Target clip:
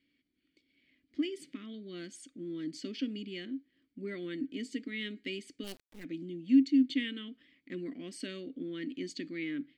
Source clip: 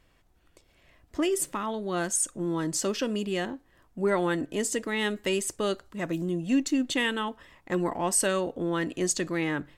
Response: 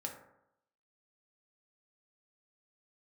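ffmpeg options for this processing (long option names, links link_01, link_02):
-filter_complex "[0:a]asplit=3[link_01][link_02][link_03];[link_01]bandpass=frequency=270:width_type=q:width=8,volume=0dB[link_04];[link_02]bandpass=frequency=2290:width_type=q:width=8,volume=-6dB[link_05];[link_03]bandpass=frequency=3010:width_type=q:width=8,volume=-9dB[link_06];[link_04][link_05][link_06]amix=inputs=3:normalize=0,equalizer=frequency=4500:width_type=o:width=0.27:gain=12,asplit=3[link_07][link_08][link_09];[link_07]afade=type=out:start_time=5.63:duration=0.02[link_10];[link_08]acrusher=bits=7:dc=4:mix=0:aa=0.000001,afade=type=in:start_time=5.63:duration=0.02,afade=type=out:start_time=6.03:duration=0.02[link_11];[link_09]afade=type=in:start_time=6.03:duration=0.02[link_12];[link_10][link_11][link_12]amix=inputs=3:normalize=0,volume=2.5dB"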